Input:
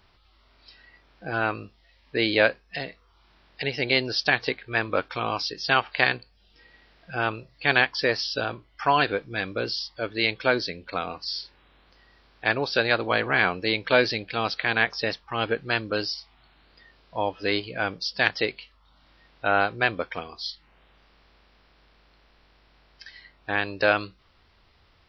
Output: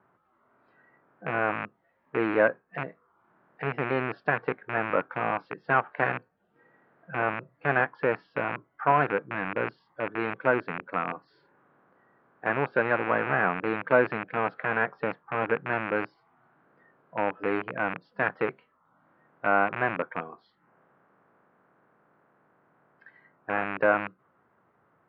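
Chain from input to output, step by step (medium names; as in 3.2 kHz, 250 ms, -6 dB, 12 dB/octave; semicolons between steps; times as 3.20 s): rattle on loud lows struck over -38 dBFS, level -8 dBFS; elliptic band-pass 140–1500 Hz, stop band 80 dB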